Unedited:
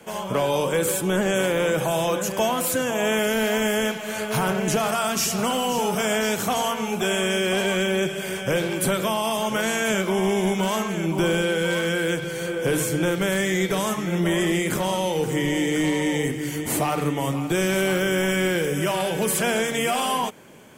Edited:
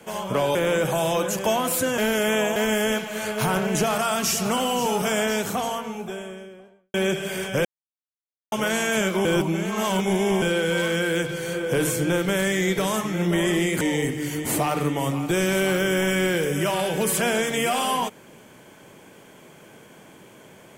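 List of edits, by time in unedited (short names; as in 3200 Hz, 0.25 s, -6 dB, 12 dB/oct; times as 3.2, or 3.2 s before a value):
0.55–1.48 cut
2.91–3.49 reverse
5.97–7.87 studio fade out
8.58–9.45 mute
10.18–11.35 reverse
14.74–16.02 cut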